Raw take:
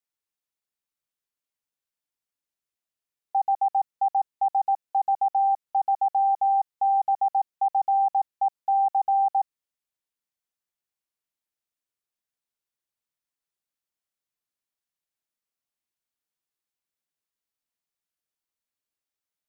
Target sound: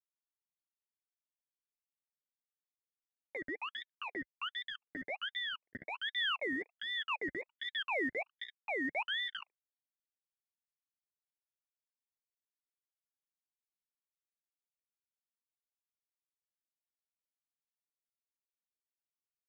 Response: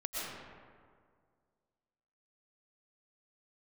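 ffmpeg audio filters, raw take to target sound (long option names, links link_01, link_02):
-filter_complex "[0:a]equalizer=frequency=730:width_type=o:width=1:gain=10,acontrast=50,flanger=delay=9:depth=4.8:regen=-6:speed=0.14:shape=triangular,asplit=5[link_01][link_02][link_03][link_04][link_05];[link_02]adelay=121,afreqshift=-30,volume=-14.5dB[link_06];[link_03]adelay=242,afreqshift=-60,volume=-21.1dB[link_07];[link_04]adelay=363,afreqshift=-90,volume=-27.6dB[link_08];[link_05]adelay=484,afreqshift=-120,volume=-34.2dB[link_09];[link_01][link_06][link_07][link_08][link_09]amix=inputs=5:normalize=0,asettb=1/sr,asplit=3[link_10][link_11][link_12];[link_10]atrim=end=3.364[link_13];[link_11]atrim=start=3.36:end=5.87,asetpts=PTS-STARTPTS,afade=type=in:duration=0.004:curve=qsin,afade=type=out:start_time=2.506:duration=0.004:curve=qsin,acrossover=split=480|980[link_14][link_15][link_16];[link_14]acompressor=threshold=-34dB:ratio=4[link_17];[link_15]acompressor=threshold=-17dB:ratio=4[link_18];[link_16]acompressor=threshold=-24dB:ratio=4[link_19];[link_17][link_18][link_19]amix=inputs=3:normalize=0[link_20];[link_12]atrim=start=5.866[link_21];[link_13][link_20]acrossfade=duration=0.004:curve1=hsin:curve2=qsin[link_22];[link_22][link_21]acrossfade=duration=0.004:curve1=qsin:curve2=hsin,asplit=3[link_23][link_24][link_25];[link_23]bandpass=frequency=530:width_type=q:width=8,volume=0dB[link_26];[link_24]bandpass=frequency=1840:width_type=q:width=8,volume=-6dB[link_27];[link_25]bandpass=frequency=2480:width_type=q:width=8,volume=-9dB[link_28];[link_26][link_27][link_28]amix=inputs=3:normalize=0,bandreject=frequency=750:width=12,acrusher=bits=5:mix=0:aa=0.5,firequalizer=gain_entry='entry(490,0);entry(700,-10);entry(1000,7);entry(1500,-29)':delay=0.05:min_phase=1,aeval=exprs='val(0)*sin(2*PI*1900*n/s+1900*0.45/1.3*sin(2*PI*1.3*n/s))':channel_layout=same,volume=4dB"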